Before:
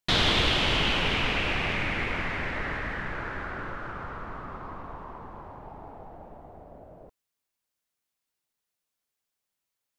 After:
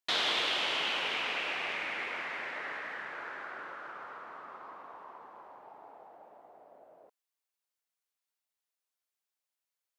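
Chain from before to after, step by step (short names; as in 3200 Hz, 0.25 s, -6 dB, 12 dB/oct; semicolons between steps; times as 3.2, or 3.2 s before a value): HPF 500 Hz 12 dB/oct; gain -5.5 dB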